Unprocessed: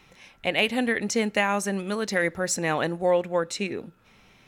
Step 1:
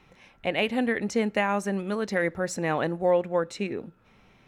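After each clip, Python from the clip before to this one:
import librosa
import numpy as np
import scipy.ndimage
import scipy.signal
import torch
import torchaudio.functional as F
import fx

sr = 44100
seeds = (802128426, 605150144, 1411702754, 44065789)

y = fx.high_shelf(x, sr, hz=2700.0, db=-10.5)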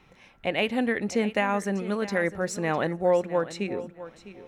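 y = fx.echo_feedback(x, sr, ms=655, feedback_pct=18, wet_db=-15.0)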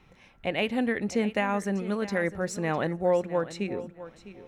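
y = fx.low_shelf(x, sr, hz=170.0, db=5.5)
y = y * librosa.db_to_amplitude(-2.5)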